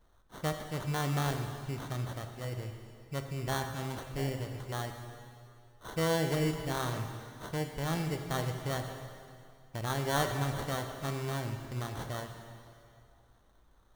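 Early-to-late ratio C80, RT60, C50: 7.0 dB, 2.4 s, 6.0 dB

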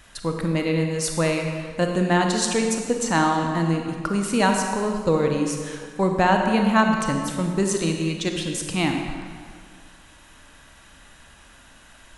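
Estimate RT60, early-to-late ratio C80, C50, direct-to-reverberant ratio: 2.0 s, 5.0 dB, 3.5 dB, 3.0 dB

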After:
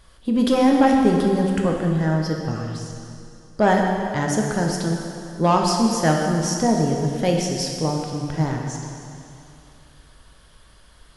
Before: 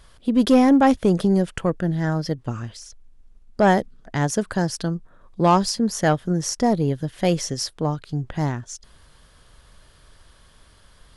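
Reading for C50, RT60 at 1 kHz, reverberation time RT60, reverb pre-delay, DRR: 2.0 dB, 2.6 s, 2.6 s, 4 ms, 0.0 dB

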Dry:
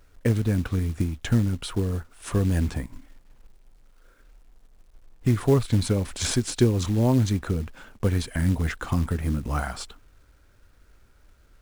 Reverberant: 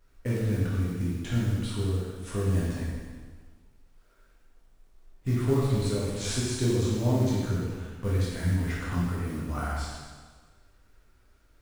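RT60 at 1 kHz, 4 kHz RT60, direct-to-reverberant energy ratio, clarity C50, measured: 1.5 s, 1.4 s, −7.5 dB, −1.5 dB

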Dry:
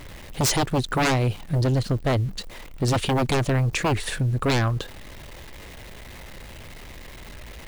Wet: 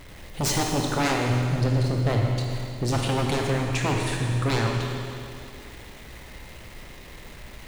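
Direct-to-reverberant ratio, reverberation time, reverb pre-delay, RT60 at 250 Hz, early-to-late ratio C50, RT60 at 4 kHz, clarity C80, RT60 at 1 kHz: −0.5 dB, 2.6 s, 24 ms, 2.6 s, 1.0 dB, 2.5 s, 2.0 dB, 2.6 s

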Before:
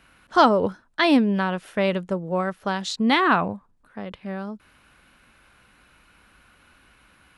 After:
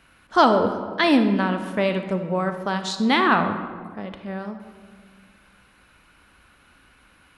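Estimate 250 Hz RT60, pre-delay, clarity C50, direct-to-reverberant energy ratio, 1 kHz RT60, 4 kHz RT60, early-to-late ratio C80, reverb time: 2.1 s, 32 ms, 8.5 dB, 7.5 dB, 1.6 s, 0.95 s, 10.0 dB, 1.8 s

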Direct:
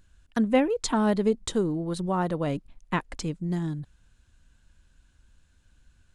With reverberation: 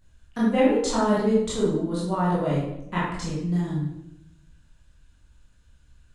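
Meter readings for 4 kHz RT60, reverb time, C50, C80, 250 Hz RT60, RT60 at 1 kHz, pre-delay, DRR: 0.60 s, 0.85 s, 1.0 dB, 4.0 dB, 1.1 s, 0.75 s, 16 ms, −8.0 dB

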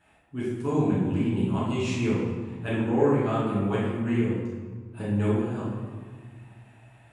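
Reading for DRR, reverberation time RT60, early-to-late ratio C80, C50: −8.5 dB, 1.6 s, 2.5 dB, −0.5 dB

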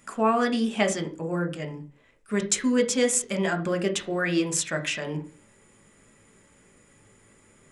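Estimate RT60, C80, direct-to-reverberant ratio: 0.40 s, 20.0 dB, 5.0 dB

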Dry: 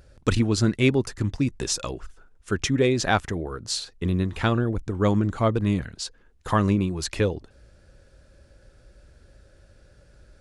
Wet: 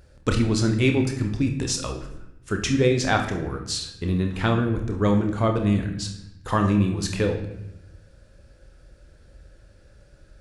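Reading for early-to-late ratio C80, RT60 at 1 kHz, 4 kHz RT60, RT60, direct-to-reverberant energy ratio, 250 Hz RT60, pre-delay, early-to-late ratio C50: 10.5 dB, 0.85 s, 0.70 s, 0.85 s, 3.5 dB, 1.3 s, 26 ms, 7.5 dB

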